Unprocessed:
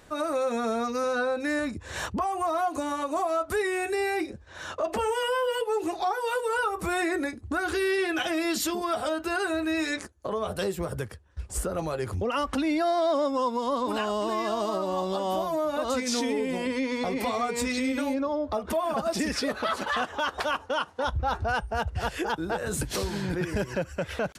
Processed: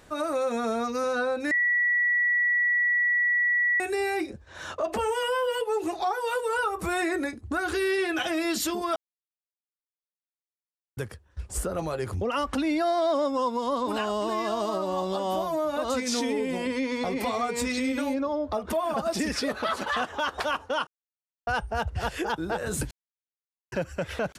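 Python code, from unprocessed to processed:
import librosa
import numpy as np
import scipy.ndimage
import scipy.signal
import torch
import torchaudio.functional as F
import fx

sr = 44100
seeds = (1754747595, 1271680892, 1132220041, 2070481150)

y = fx.edit(x, sr, fx.bleep(start_s=1.51, length_s=2.29, hz=1940.0, db=-20.5),
    fx.silence(start_s=8.96, length_s=2.01),
    fx.silence(start_s=20.87, length_s=0.6),
    fx.silence(start_s=22.91, length_s=0.81), tone=tone)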